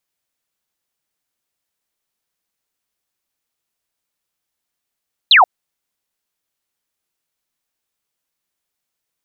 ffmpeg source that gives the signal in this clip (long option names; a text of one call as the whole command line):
ffmpeg -f lavfi -i "aevalsrc='0.562*clip(t/0.002,0,1)*clip((0.13-t)/0.002,0,1)*sin(2*PI*4300*0.13/log(660/4300)*(exp(log(660/4300)*t/0.13)-1))':duration=0.13:sample_rate=44100" out.wav